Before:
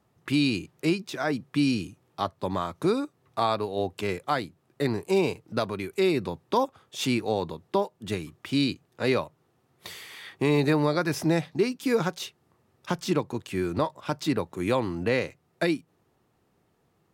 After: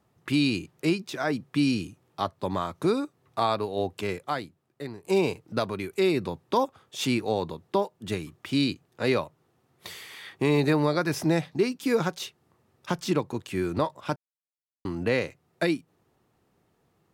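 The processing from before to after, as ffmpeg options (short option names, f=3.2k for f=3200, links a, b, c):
-filter_complex "[0:a]asplit=4[a][b][c][d];[a]atrim=end=5.04,asetpts=PTS-STARTPTS,afade=t=out:st=3.91:d=1.13:silence=0.16788[e];[b]atrim=start=5.04:end=14.16,asetpts=PTS-STARTPTS,afade=t=in:d=0.004:c=hsin:silence=0.16788,afade=t=out:st=9.116:d=0.004:c=hsin[f];[c]atrim=start=14.16:end=14.85,asetpts=PTS-STARTPTS,volume=0[g];[d]atrim=start=14.85,asetpts=PTS-STARTPTS,afade=t=in:d=0.004:c=hsin[h];[e][f][g][h]concat=n=4:v=0:a=1"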